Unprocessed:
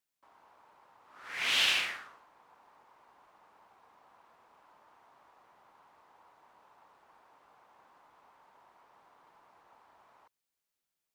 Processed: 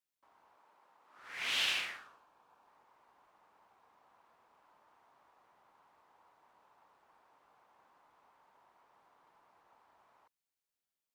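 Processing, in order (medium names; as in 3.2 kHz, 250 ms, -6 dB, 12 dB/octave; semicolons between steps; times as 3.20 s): 0.56–1.19 s: high-pass 190 Hz 12 dB/octave; 1.99–2.67 s: band-stop 2 kHz, Q 6.3; trim -5.5 dB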